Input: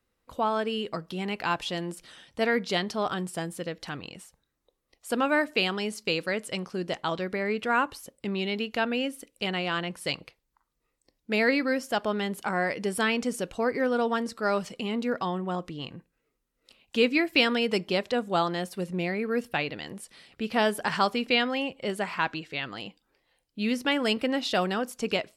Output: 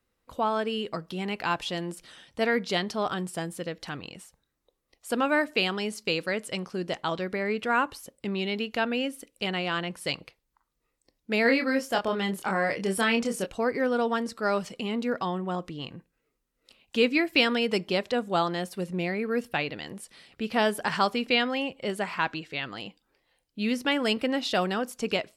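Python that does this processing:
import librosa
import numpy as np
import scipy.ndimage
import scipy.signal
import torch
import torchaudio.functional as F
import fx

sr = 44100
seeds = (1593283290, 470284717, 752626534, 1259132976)

y = fx.doubler(x, sr, ms=26.0, db=-4.5, at=(11.44, 13.45), fade=0.02)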